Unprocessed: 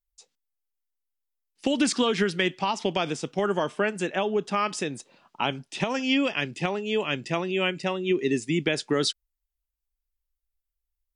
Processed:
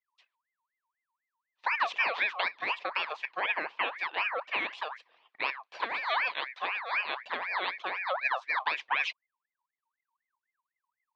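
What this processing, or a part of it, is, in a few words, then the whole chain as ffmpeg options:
voice changer toy: -af "aeval=exprs='val(0)*sin(2*PI*1500*n/s+1500*0.4/4*sin(2*PI*4*n/s))':c=same,highpass=500,equalizer=f=1k:t=q:w=4:g=7,equalizer=f=1.4k:t=q:w=4:g=-7,equalizer=f=2.5k:t=q:w=4:g=5,lowpass=f=3.7k:w=0.5412,lowpass=f=3.7k:w=1.3066,volume=-3.5dB"

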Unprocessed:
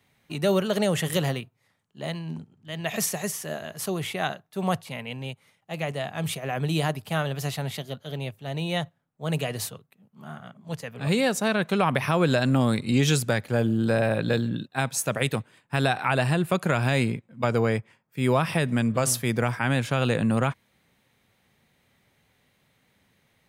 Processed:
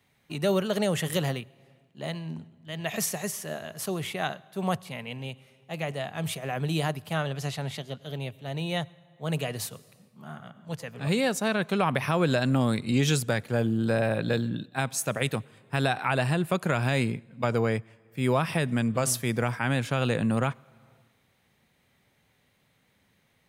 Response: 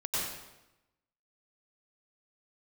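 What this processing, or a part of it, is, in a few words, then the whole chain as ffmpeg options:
compressed reverb return: -filter_complex "[0:a]asettb=1/sr,asplit=3[a][b][c];[a]atrim=end=7.134[d];[b]atrim=start=7.13:end=7.99,asetpts=PTS-STARTPTS,afade=t=in:d=0.004:c=qsin,afade=t=out:st=0.856:d=0.004:c=qsin,lowpass=9.6k[e];[c]atrim=start=7.986[f];[d][e]acrossfade=d=0.004:c1=hsin:c2=qsin[g];[g][f]acrossfade=d=0.004:c1=qsin:c2=hsin,asplit=2[h][i];[1:a]atrim=start_sample=2205[j];[i][j]afir=irnorm=-1:irlink=0,acompressor=threshold=-31dB:ratio=8,volume=-18dB[k];[h][k]amix=inputs=2:normalize=0,volume=-2.5dB"

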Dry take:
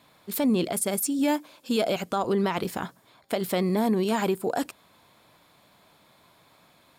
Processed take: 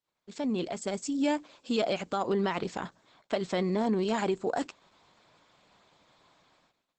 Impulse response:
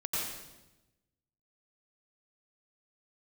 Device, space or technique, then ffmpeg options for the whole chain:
video call: -af "highpass=f=130:p=1,dynaudnorm=f=210:g=7:m=5dB,agate=range=-31dB:threshold=-56dB:ratio=16:detection=peak,volume=-7.5dB" -ar 48000 -c:a libopus -b:a 12k

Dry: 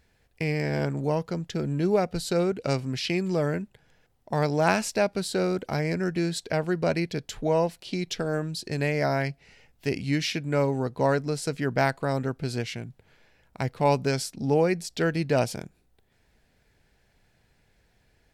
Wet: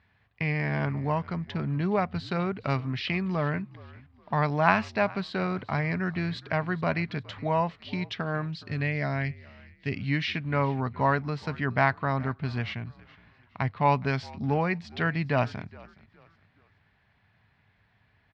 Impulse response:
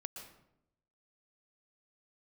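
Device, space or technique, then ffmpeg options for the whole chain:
frequency-shifting delay pedal into a guitar cabinet: -filter_complex "[0:a]asettb=1/sr,asplit=3[a][b][c];[a]atrim=end=8.554[d];[b]atrim=start=8.55:end=10.01,asetpts=PTS-STARTPTS,afade=t=in:d=0.004:c=qsin,afade=t=out:st=1.456:d=0.004:c=qsin,equalizer=f=990:t=o:w=1.3:g=-11[e];[c]atrim=start=10.006[f];[d][e]acrossfade=d=0.004:c1=hsin:c2=qsin[g];[g][f]acrossfade=d=0.004:c1=qsin:c2=hsin,asplit=4[h][i][j][k];[i]adelay=417,afreqshift=-55,volume=-21.5dB[l];[j]adelay=834,afreqshift=-110,volume=-30.4dB[m];[k]adelay=1251,afreqshift=-165,volume=-39.2dB[n];[h][l][m][n]amix=inputs=4:normalize=0,highpass=80,equalizer=f=100:t=q:w=4:g=8,equalizer=f=340:t=q:w=4:g=-9,equalizer=f=500:t=q:w=4:g=-10,equalizer=f=1.1k:t=q:w=4:g=9,equalizer=f=1.9k:t=q:w=4:g=4,lowpass=f=3.7k:w=0.5412,lowpass=f=3.7k:w=1.3066"

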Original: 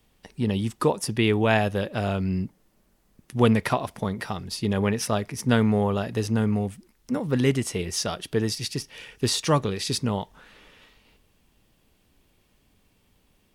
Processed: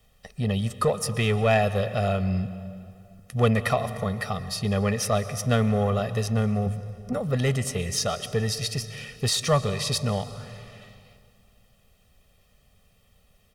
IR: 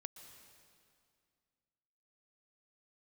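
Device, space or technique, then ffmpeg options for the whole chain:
saturated reverb return: -filter_complex "[0:a]asettb=1/sr,asplit=3[a][b][c];[a]atrim=end=6.664[d];[b]atrim=start=6.66:end=7.13,asetpts=PTS-STARTPTS,afade=t=in:d=0.004:c=qsin,afade=t=out:st=0.466:d=0.004:c=qsin,tiltshelf=f=1.3k:g=6[e];[c]atrim=start=7.126[f];[d][e]acrossfade=d=0.004:c1=hsin:c2=qsin[g];[g][f]acrossfade=d=0.004:c1=qsin:c2=hsin,asplit=2[h][i];[1:a]atrim=start_sample=2205[j];[i][j]afir=irnorm=-1:irlink=0,asoftclip=type=tanh:threshold=-26.5dB,volume=5dB[k];[h][k]amix=inputs=2:normalize=0,aecho=1:1:1.6:0.9,volume=-6.5dB"

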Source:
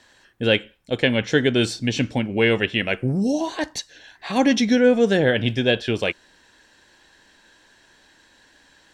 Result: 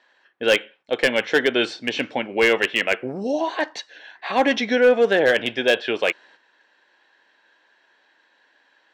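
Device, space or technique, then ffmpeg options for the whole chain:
walkie-talkie: -af "highpass=480,lowpass=2.9k,asoftclip=type=hard:threshold=-14.5dB,agate=range=-8dB:threshold=-54dB:ratio=16:detection=peak,volume=5dB"

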